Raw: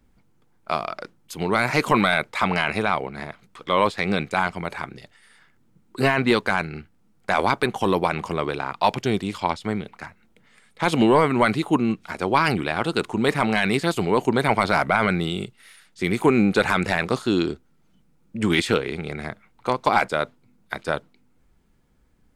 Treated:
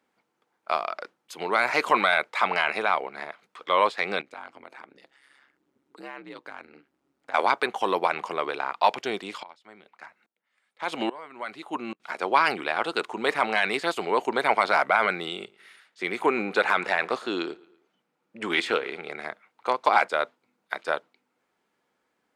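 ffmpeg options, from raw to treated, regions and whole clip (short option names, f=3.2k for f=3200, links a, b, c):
-filter_complex "[0:a]asettb=1/sr,asplit=3[a][b][c];[a]atrim=end=4.214[d];[b]atrim=start=4.21:end=7.34,asetpts=PTS-STARTPTS,afade=t=in:d=0.004:c=qsin,afade=t=out:st=3.126:d=0.004:c=qsin,equalizer=f=240:w=1.5:g=10.5,aeval=exprs='val(0)*sin(2*PI*68*n/s)':c=same,acompressor=threshold=-46dB:ratio=2:attack=3.2:release=140:knee=1:detection=peak[e];[c]atrim=start=7.336[f];[d][e]acrossfade=d=0.004:c1=hsin:c2=qsin[g];[g][f]acrossfade=d=0.004:c1=qsin:c2=hsin,asettb=1/sr,asplit=3[h][i][j];[h]atrim=end=9.434[k];[i]atrim=start=9.43:end=12,asetpts=PTS-STARTPTS,afade=t=in:d=0.004:c=qsin,afade=t=out:st=2.566:d=0.004:c=qsin,bandreject=f=450:w=8.7,aeval=exprs='val(0)*pow(10,-24*if(lt(mod(-1.2*n/s,1),2*abs(-1.2)/1000),1-mod(-1.2*n/s,1)/(2*abs(-1.2)/1000),(mod(-1.2*n/s,1)-2*abs(-1.2)/1000)/(1-2*abs(-1.2)/1000))/20)':c=same[l];[j]atrim=start=11.996[m];[k][l]acrossfade=d=0.004:c1=hsin:c2=qsin[n];[n][m]acrossfade=d=0.004:c1=qsin:c2=hsin,asettb=1/sr,asplit=3[o][p][q];[o]atrim=end=15.364[r];[p]atrim=start=15.36:end=19.1,asetpts=PTS-STARTPTS,afade=t=in:d=0.004:c=qsin,afade=t=out:st=3.736:d=0.004:c=qsin,bass=f=250:g=-1,treble=f=4k:g=-4,asplit=2[s][t];[t]adelay=113,lowpass=f=4.5k:p=1,volume=-23dB,asplit=2[u][v];[v]adelay=113,lowpass=f=4.5k:p=1,volume=0.5,asplit=2[w][x];[x]adelay=113,lowpass=f=4.5k:p=1,volume=0.5[y];[s][u][w][y]amix=inputs=4:normalize=0,atrim=end_sample=164934[z];[q]atrim=start=19.096[aa];[r][z]acrossfade=d=0.004:c1=hsin:c2=qsin[ab];[ab][aa]acrossfade=d=0.004:c1=qsin:c2=hsin,highpass=510,highshelf=f=6.4k:g=-11"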